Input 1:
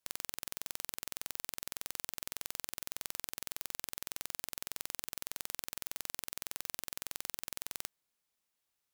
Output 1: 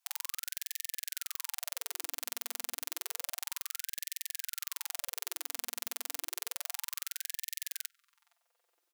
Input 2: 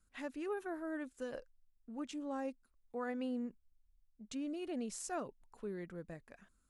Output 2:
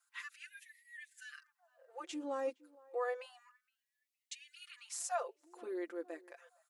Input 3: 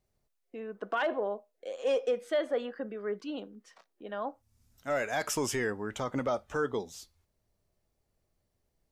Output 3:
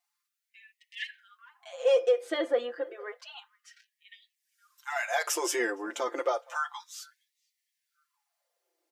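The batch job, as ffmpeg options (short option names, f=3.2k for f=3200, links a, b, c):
-filter_complex "[0:a]aecho=1:1:5.8:0.91,asplit=2[a][b];[b]adelay=465,lowpass=f=1.3k:p=1,volume=-22dB,asplit=2[c][d];[d]adelay=465,lowpass=f=1.3k:p=1,volume=0.5,asplit=2[e][f];[f]adelay=465,lowpass=f=1.3k:p=1,volume=0.5[g];[a][c][e][g]amix=inputs=4:normalize=0,afftfilt=real='re*gte(b*sr/1024,230*pow(1800/230,0.5+0.5*sin(2*PI*0.3*pts/sr)))':imag='im*gte(b*sr/1024,230*pow(1800/230,0.5+0.5*sin(2*PI*0.3*pts/sr)))':win_size=1024:overlap=0.75,volume=1dB"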